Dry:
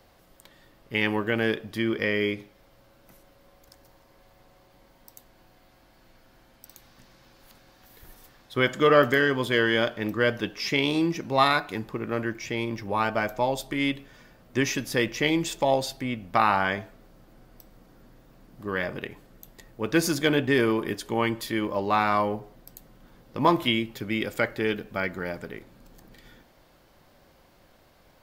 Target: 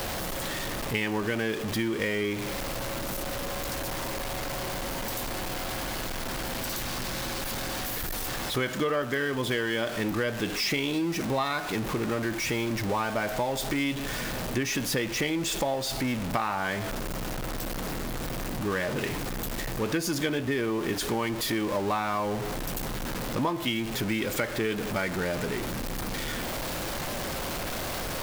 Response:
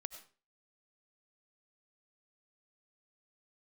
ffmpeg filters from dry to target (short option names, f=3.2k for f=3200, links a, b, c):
-af "aeval=exprs='val(0)+0.5*0.0447*sgn(val(0))':c=same,acompressor=threshold=-25dB:ratio=6"